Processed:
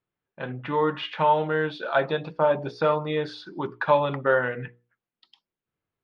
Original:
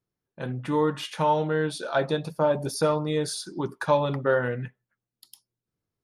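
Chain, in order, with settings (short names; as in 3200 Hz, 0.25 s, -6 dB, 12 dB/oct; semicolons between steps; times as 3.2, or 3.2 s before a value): LPF 3200 Hz 24 dB/oct; low shelf 490 Hz -8.5 dB; notches 60/120/180/240/300/360/420/480 Hz; gain +5 dB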